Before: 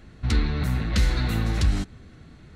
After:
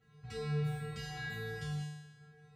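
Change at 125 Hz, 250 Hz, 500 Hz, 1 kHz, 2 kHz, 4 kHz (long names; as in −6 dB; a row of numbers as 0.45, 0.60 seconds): −13.0, −14.0, −6.0, −11.5, −9.0, −14.0 decibels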